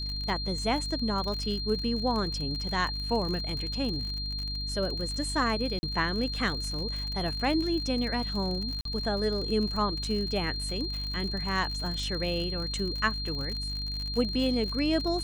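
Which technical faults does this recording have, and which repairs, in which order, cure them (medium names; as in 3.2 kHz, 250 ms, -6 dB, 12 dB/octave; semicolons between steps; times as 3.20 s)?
crackle 54 per s -33 dBFS
hum 50 Hz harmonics 6 -36 dBFS
whine 4.2 kHz -34 dBFS
5.79–5.83 s: dropout 40 ms
8.81–8.85 s: dropout 43 ms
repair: de-click; de-hum 50 Hz, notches 6; band-stop 4.2 kHz, Q 30; interpolate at 5.79 s, 40 ms; interpolate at 8.81 s, 43 ms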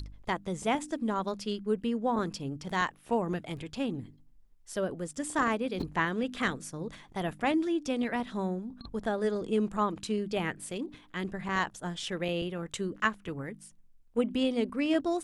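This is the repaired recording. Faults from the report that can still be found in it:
nothing left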